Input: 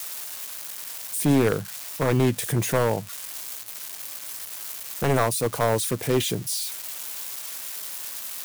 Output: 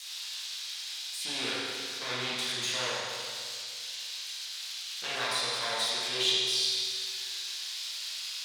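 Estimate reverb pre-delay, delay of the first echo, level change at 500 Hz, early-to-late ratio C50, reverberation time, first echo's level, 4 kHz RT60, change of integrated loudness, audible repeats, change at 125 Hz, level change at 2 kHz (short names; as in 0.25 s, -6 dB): 8 ms, none, -15.0 dB, -3.0 dB, 2.2 s, none, 2.2 s, -5.0 dB, none, -24.5 dB, -1.5 dB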